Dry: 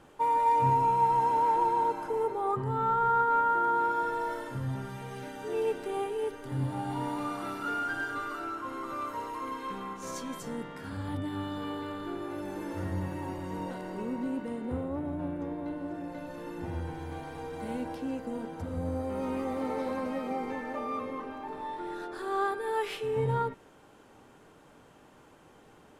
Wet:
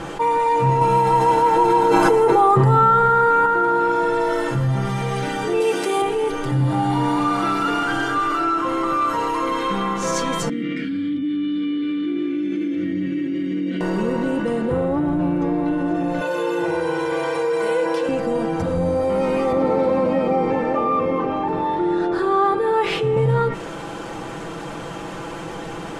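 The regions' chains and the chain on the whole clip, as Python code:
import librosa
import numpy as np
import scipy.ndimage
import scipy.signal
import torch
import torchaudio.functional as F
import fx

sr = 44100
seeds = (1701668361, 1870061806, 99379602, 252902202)

y = fx.chain(x, sr, fx.high_shelf(hz=9200.0, db=8.5),
    fx.env_flatten(amount_pct=100), at=(0.81, 3.46))
y = fx.chain(y, sr, fx.highpass(hz=200.0, slope=12),
    fx.high_shelf(hz=4000.0, db=10.0), at=(5.6, 6.02))
y = fx.chain(y, sr, fx.vowel_filter(vowel='i'),
    fx.env_flatten(amount_pct=70), at=(10.49, 13.81))
y = fx.chain(y, sr, fx.highpass(hz=310.0, slope=12),
    fx.comb(ms=2.0, depth=0.99), at=(16.21, 18.09))
y = fx.chain(y, sr, fx.highpass(hz=54.0, slope=12),
    fx.tilt_eq(slope=-2.5), at=(19.52, 23.17))
y = scipy.signal.sosfilt(scipy.signal.butter(2, 8500.0, 'lowpass', fs=sr, output='sos'), y)
y = y + 0.63 * np.pad(y, (int(6.0 * sr / 1000.0), 0))[:len(y)]
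y = fx.env_flatten(y, sr, amount_pct=50)
y = y * librosa.db_to_amplitude(6.5)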